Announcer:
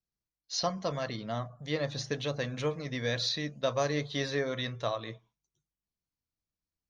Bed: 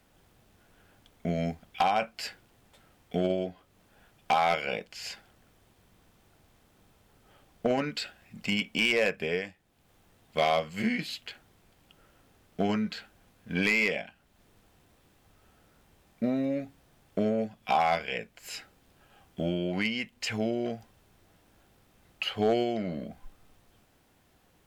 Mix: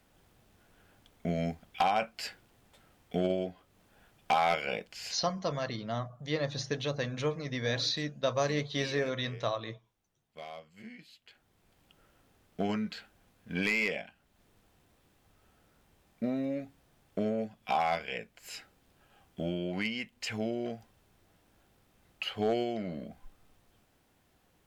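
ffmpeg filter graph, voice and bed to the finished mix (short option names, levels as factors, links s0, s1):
-filter_complex "[0:a]adelay=4600,volume=1[s0];[1:a]volume=4.73,afade=t=out:st=5.03:d=0.39:silence=0.133352,afade=t=in:st=11.22:d=0.54:silence=0.16788[s1];[s0][s1]amix=inputs=2:normalize=0"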